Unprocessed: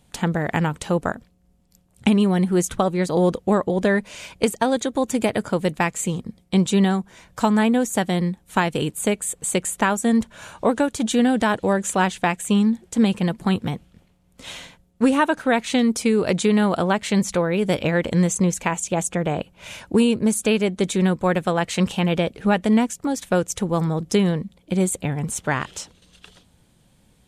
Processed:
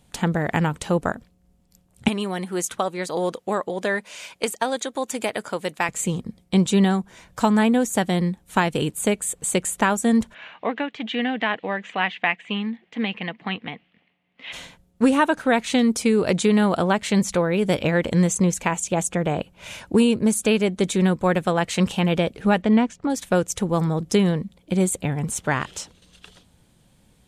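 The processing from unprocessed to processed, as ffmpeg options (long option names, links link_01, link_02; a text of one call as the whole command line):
ffmpeg -i in.wav -filter_complex "[0:a]asettb=1/sr,asplit=3[link_01][link_02][link_03];[link_01]atrim=end=2.084[link_04];[link_02]atrim=start=2.08:end=5.89,asetpts=PTS-STARTPTS,afade=type=in:duration=0.004:curve=qsin,afade=type=out:start_time=3.806:duration=0.004:curve=qsin,highpass=frequency=680:poles=1[link_05];[link_03]atrim=start=5.886[link_06];[link_04][link_05]acrossfade=duration=0.004:curve1=hsin:curve2=qsin[link_07];[link_07][link_06]acrossfade=duration=0.004:curve1=qsin:curve2=hsin,asplit=3[link_08][link_09][link_10];[link_08]afade=type=out:start_time=10.33:duration=0.02[link_11];[link_09]highpass=340,equalizer=frequency=370:width_type=q:width=4:gain=-9,equalizer=frequency=550:width_type=q:width=4:gain=-8,equalizer=frequency=930:width_type=q:width=4:gain=-5,equalizer=frequency=1400:width_type=q:width=4:gain=-6,equalizer=frequency=2000:width_type=q:width=4:gain=8,equalizer=frequency=2800:width_type=q:width=4:gain=5,lowpass=frequency=3300:width=0.5412,lowpass=frequency=3300:width=1.3066,afade=type=in:start_time=10.33:duration=0.02,afade=type=out:start_time=14.52:duration=0.02[link_12];[link_10]afade=type=in:start_time=14.52:duration=0.02[link_13];[link_11][link_12][link_13]amix=inputs=3:normalize=0,asettb=1/sr,asplit=3[link_14][link_15][link_16];[link_14]atrim=end=22.624[link_17];[link_15]atrim=start=22.62:end=23.1,asetpts=PTS-STARTPTS,afade=type=in:duration=0.004:curve=qsin,afade=type=out:start_time=0.476:duration=0.004:curve=qsin,lowpass=3700[link_18];[link_16]atrim=start=23.096[link_19];[link_17][link_18]acrossfade=duration=0.004:curve1=hsin:curve2=qsin[link_20];[link_20][link_19]acrossfade=duration=0.004:curve1=qsin:curve2=hsin" out.wav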